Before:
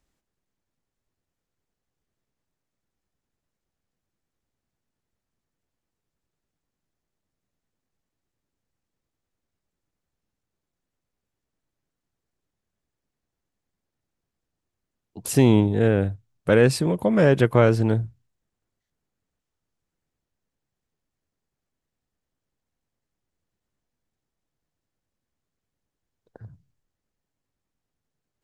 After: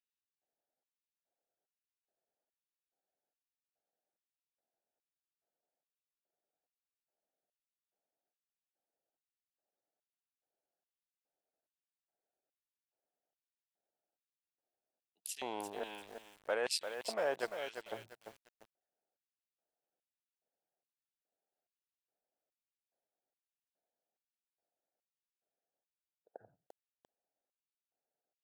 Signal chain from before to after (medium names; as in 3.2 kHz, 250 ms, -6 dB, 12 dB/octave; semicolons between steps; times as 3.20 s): local Wiener filter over 41 samples; reverse; compression 10:1, threshold -30 dBFS, peak gain reduction 19 dB; reverse; LFO high-pass square 1.2 Hz 720–3100 Hz; bit-crushed delay 345 ms, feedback 35%, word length 9-bit, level -7.5 dB; trim +1.5 dB